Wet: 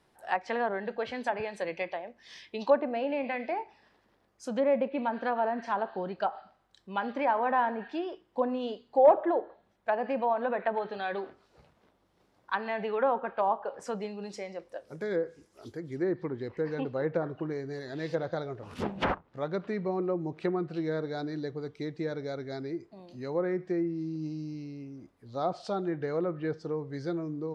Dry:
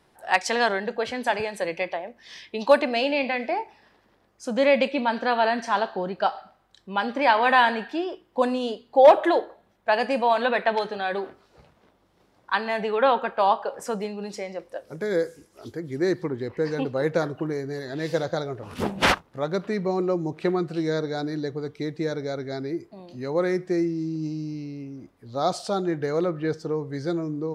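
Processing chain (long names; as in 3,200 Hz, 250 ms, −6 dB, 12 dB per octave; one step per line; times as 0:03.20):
treble cut that deepens with the level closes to 1,100 Hz, closed at −18 dBFS
level −6 dB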